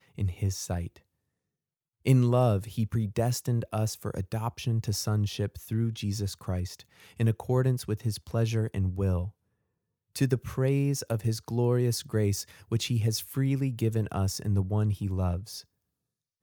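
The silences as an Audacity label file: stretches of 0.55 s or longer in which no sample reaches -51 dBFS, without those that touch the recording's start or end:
0.990000	2.050000	silence
9.310000	10.160000	silence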